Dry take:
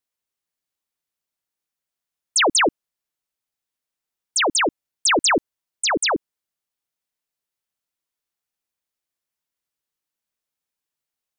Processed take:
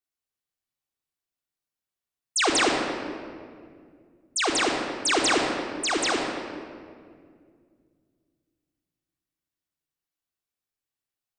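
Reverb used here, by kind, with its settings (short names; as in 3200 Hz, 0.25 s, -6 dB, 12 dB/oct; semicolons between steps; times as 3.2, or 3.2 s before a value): shoebox room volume 3900 m³, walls mixed, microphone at 3.5 m; gain -8.5 dB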